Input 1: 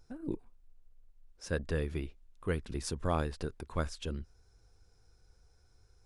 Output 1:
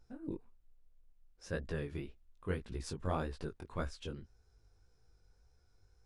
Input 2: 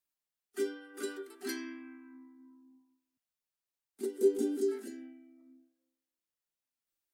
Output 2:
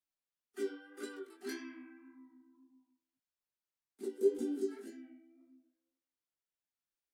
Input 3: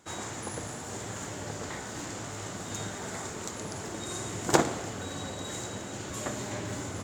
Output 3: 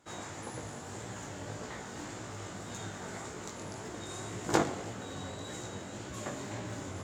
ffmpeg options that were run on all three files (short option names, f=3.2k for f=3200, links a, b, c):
-af "highshelf=f=6k:g=-6,flanger=delay=16:depth=5.8:speed=1.8,volume=-1dB"